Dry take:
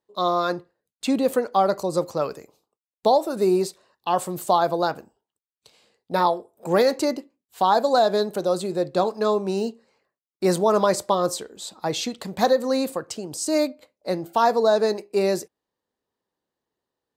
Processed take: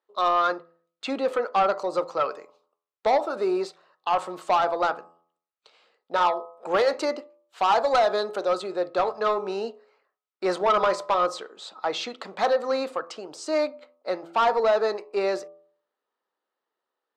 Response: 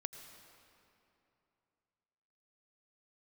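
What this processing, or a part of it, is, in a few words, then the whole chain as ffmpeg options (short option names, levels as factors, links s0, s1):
intercom: -filter_complex "[0:a]highpass=480,lowpass=3500,equalizer=f=1300:t=o:w=0.22:g=9.5,asoftclip=type=tanh:threshold=0.168,bandreject=f=84.4:t=h:w=4,bandreject=f=168.8:t=h:w=4,bandreject=f=253.2:t=h:w=4,bandreject=f=337.6:t=h:w=4,bandreject=f=422:t=h:w=4,bandreject=f=506.4:t=h:w=4,bandreject=f=590.8:t=h:w=4,bandreject=f=675.2:t=h:w=4,bandreject=f=759.6:t=h:w=4,bandreject=f=844:t=h:w=4,bandreject=f=928.4:t=h:w=4,bandreject=f=1012.8:t=h:w=4,bandreject=f=1097.2:t=h:w=4,bandreject=f=1181.6:t=h:w=4,bandreject=f=1266:t=h:w=4,asettb=1/sr,asplit=3[s0][s1][s2];[s0]atrim=end=6.714[s3];[s1]atrim=start=6.71:end=8.62,asetpts=PTS-STARTPTS,afade=t=in:d=0.004:c=qsin,afade=t=out:st=1.906:d=0.004:c=qsin,highshelf=f=5500:g=6[s4];[s2]atrim=start=8.616[s5];[s3][s4]acrossfade=d=0.004:c1=hsin:c2=qsin[s6];[s6][s5]acrossfade=d=0.004:c1=qsin:c2=hsin,volume=1.19"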